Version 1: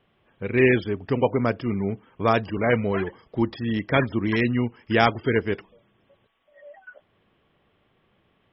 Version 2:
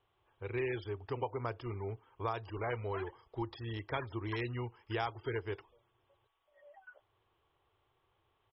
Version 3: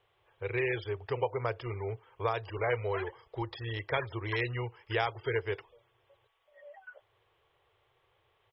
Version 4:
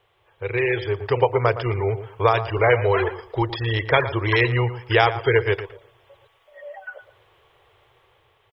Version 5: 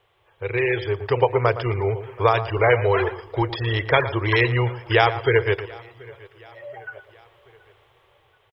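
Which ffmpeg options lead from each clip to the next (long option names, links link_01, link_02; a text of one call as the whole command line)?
ffmpeg -i in.wav -af "firequalizer=gain_entry='entry(110,0);entry(190,-21);entry(360,-2);entry(590,-6);entry(870,4);entry(1800,-6);entry(3900,0);entry(6200,-6)':delay=0.05:min_phase=1,acompressor=threshold=-25dB:ratio=4,volume=-8dB" out.wav
ffmpeg -i in.wav -af "equalizer=frequency=125:width_type=o:width=1:gain=5,equalizer=frequency=250:width_type=o:width=1:gain=-9,equalizer=frequency=500:width_type=o:width=1:gain=10,equalizer=frequency=2000:width_type=o:width=1:gain=8,equalizer=frequency=4000:width_type=o:width=1:gain=5" out.wav
ffmpeg -i in.wav -filter_complex "[0:a]asplit=2[link_01][link_02];[link_02]adelay=115,lowpass=frequency=2000:poles=1,volume=-12dB,asplit=2[link_03][link_04];[link_04]adelay=115,lowpass=frequency=2000:poles=1,volume=0.24,asplit=2[link_05][link_06];[link_06]adelay=115,lowpass=frequency=2000:poles=1,volume=0.24[link_07];[link_01][link_03][link_05][link_07]amix=inputs=4:normalize=0,dynaudnorm=framelen=170:gausssize=11:maxgain=6dB,volume=7.5dB" out.wav
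ffmpeg -i in.wav -af "aecho=1:1:729|1458|2187:0.0631|0.0328|0.0171" out.wav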